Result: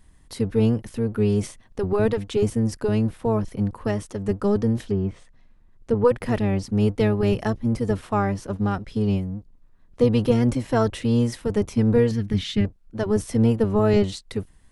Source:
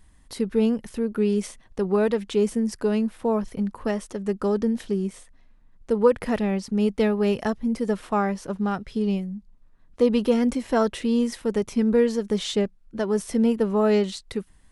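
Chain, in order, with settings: octave divider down 1 oct, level -1 dB; 4.79–6.05 s: low-pass that closes with the level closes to 2.7 kHz, closed at -22.5 dBFS; 12.11–12.65 s: graphic EQ 125/250/500/1000/2000/8000 Hz +4/+3/-12/-7/+5/-10 dB

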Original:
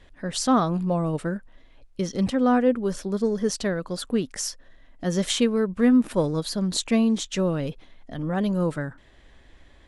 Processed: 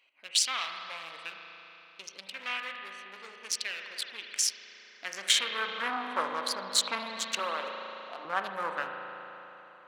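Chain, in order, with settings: local Wiener filter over 25 samples; 7.39–8.25 s: high-pass 470 Hz 12 dB/octave; in parallel at +2 dB: compression, threshold -30 dBFS, peak gain reduction 14.5 dB; on the sum: spring tank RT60 3.3 s, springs 36 ms, chirp 45 ms, DRR 3.5 dB; saturation -14 dBFS, distortion -14 dB; high-pass sweep 2.5 kHz -> 1.2 kHz, 4.55–6.04 s

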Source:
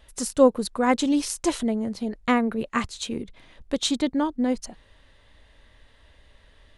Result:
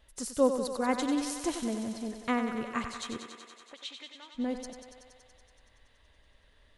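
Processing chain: 3.17–4.35 s: auto-wah 620–2900 Hz, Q 2.4, up, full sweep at -20.5 dBFS; thinning echo 94 ms, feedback 80%, high-pass 250 Hz, level -8 dB; trim -8.5 dB

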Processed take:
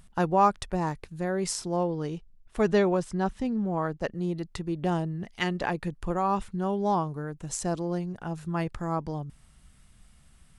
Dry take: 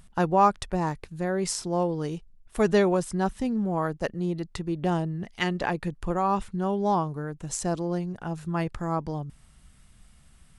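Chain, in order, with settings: 1.76–4.12 s: distance through air 55 m; trim -1.5 dB

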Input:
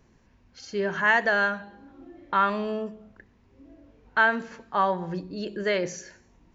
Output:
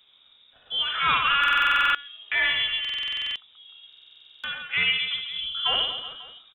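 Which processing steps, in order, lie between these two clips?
wavefolder -16 dBFS; pitch shift +6 st; reverse bouncing-ball echo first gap 60 ms, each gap 1.3×, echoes 5; frequency inversion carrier 3.7 kHz; buffer glitch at 1.39/2.80/3.88 s, samples 2048, times 11

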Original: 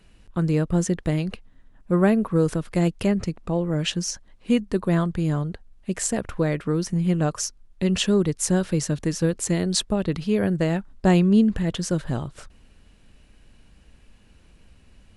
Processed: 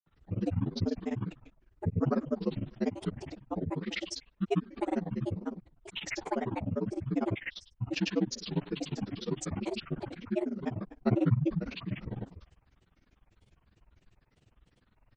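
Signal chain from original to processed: frequency axis rescaled in octaves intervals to 79%; feedback delay 74 ms, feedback 31%, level -14 dB; granulator 58 ms, grains 20 per s, pitch spread up and down by 12 st; trim -6.5 dB

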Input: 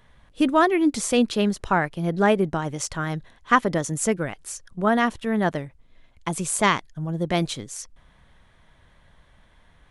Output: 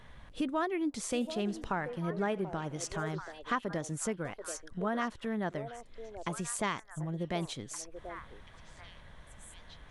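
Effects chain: treble shelf 9.4 kHz -7 dB; compression 2:1, threshold -47 dBFS, peak gain reduction 18.5 dB; repeats whose band climbs or falls 735 ms, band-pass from 530 Hz, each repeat 1.4 oct, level -6 dB; 1.03–3.15 s: modulated delay 83 ms, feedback 64%, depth 161 cents, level -20.5 dB; trim +3 dB

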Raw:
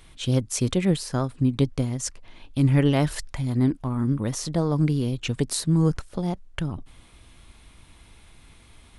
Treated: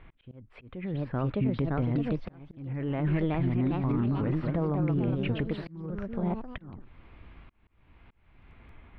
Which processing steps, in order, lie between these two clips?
inverse Chebyshev low-pass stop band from 5.9 kHz, stop band 50 dB; ever faster or slower copies 691 ms, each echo +2 st, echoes 3, each echo -6 dB; peak limiter -19.5 dBFS, peak gain reduction 11.5 dB; slow attack 574 ms

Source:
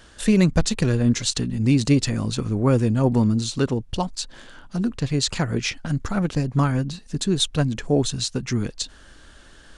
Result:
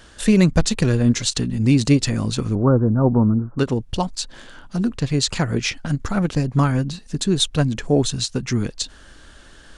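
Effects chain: 2.55–3.59 s: steep low-pass 1.5 kHz 72 dB/octave; endings held to a fixed fall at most 450 dB/s; trim +2.5 dB

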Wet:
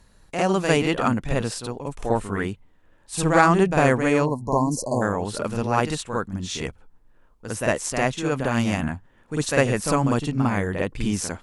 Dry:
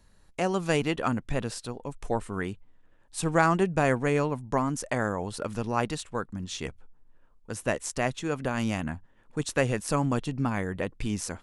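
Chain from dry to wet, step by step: Chebyshev shaper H 3 -29 dB, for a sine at -8 dBFS; reverse echo 52 ms -6 dB; spectral selection erased 4.25–5.02 s, 1.1–4 kHz; trim +6 dB

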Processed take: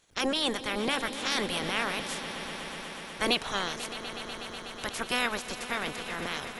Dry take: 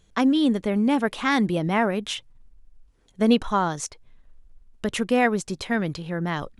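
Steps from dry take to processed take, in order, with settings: spectral peaks clipped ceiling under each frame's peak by 29 dB; echo with a slow build-up 123 ms, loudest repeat 5, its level -15 dB; trim -8.5 dB

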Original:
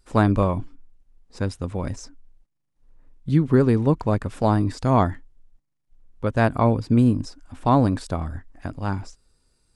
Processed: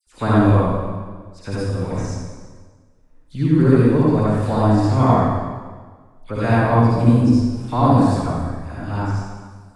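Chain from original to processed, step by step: phase dispersion lows, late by 69 ms, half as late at 2.2 kHz; reverberation RT60 1.5 s, pre-delay 48 ms, DRR -8 dB; trim -4.5 dB

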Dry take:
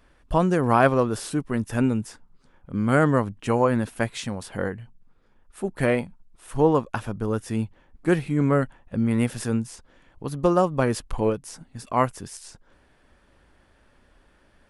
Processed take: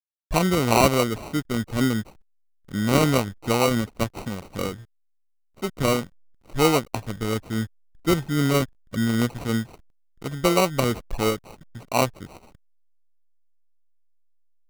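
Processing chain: hysteresis with a dead band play -36.5 dBFS; sample-and-hold 26×

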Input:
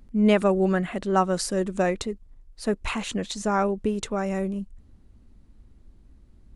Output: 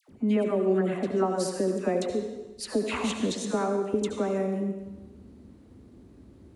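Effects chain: high-pass 72 Hz 24 dB/octave; peaking EQ 360 Hz +9.5 dB 1.8 oct; compression 3:1, threshold -32 dBFS, peak gain reduction 17.5 dB; phase dispersion lows, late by 89 ms, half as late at 1.3 kHz; on a send: reverberation RT60 1.1 s, pre-delay 67 ms, DRR 5 dB; on the sum: trim +3.5 dB

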